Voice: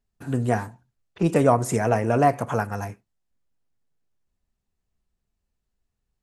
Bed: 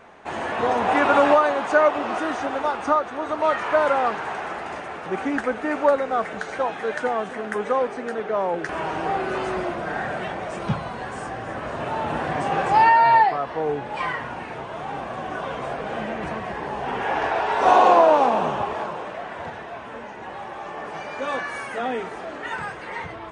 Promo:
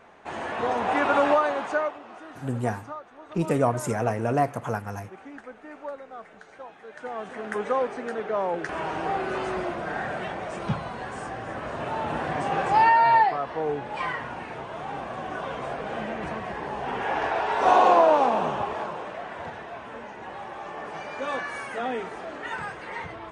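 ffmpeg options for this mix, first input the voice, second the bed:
ffmpeg -i stem1.wav -i stem2.wav -filter_complex "[0:a]adelay=2150,volume=-4.5dB[link_01];[1:a]volume=10.5dB,afade=type=out:start_time=1.6:duration=0.39:silence=0.211349,afade=type=in:start_time=6.92:duration=0.64:silence=0.177828[link_02];[link_01][link_02]amix=inputs=2:normalize=0" out.wav

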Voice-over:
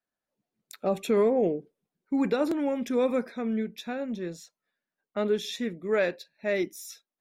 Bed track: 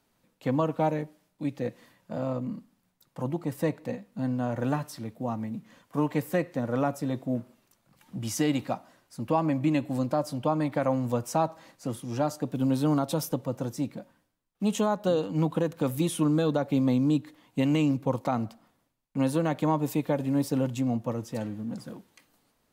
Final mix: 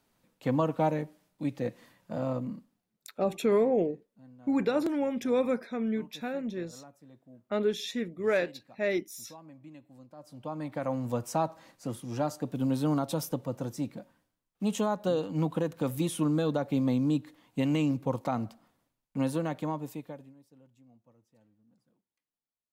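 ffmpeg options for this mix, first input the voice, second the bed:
ffmpeg -i stem1.wav -i stem2.wav -filter_complex "[0:a]adelay=2350,volume=-1.5dB[link_01];[1:a]volume=20.5dB,afade=type=out:start_time=2.37:duration=0.57:silence=0.0668344,afade=type=in:start_time=10.15:duration=1.05:silence=0.0841395,afade=type=out:start_time=19.19:duration=1.16:silence=0.0334965[link_02];[link_01][link_02]amix=inputs=2:normalize=0" out.wav

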